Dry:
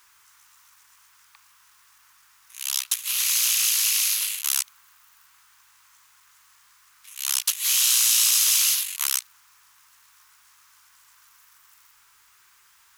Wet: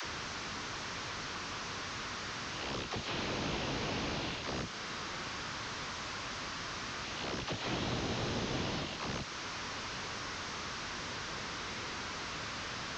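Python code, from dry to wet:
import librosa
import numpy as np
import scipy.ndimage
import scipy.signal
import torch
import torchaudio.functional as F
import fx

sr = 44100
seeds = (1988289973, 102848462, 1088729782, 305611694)

y = fx.delta_mod(x, sr, bps=32000, step_db=-36.0)
y = fx.highpass(y, sr, hz=120.0, slope=6)
y = fx.low_shelf(y, sr, hz=400.0, db=10.5)
y = fx.dispersion(y, sr, late='lows', ms=46.0, hz=400.0)
y = fx.band_squash(y, sr, depth_pct=70)
y = y * 10.0 ** (-3.0 / 20.0)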